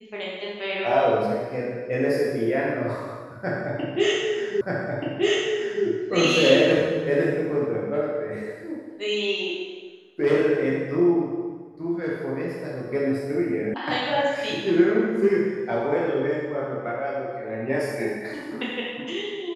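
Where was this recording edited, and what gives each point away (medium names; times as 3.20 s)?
4.61 s: repeat of the last 1.23 s
13.74 s: sound stops dead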